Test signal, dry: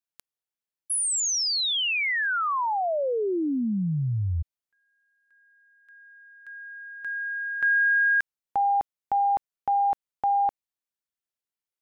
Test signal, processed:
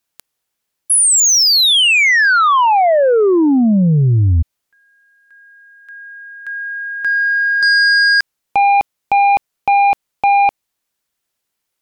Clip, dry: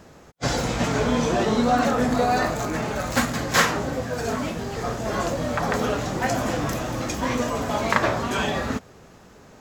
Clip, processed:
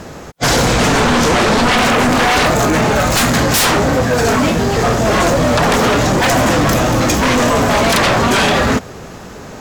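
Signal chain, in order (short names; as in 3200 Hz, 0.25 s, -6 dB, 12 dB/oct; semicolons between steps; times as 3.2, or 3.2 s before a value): sine folder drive 19 dB, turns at -3 dBFS; gain -6 dB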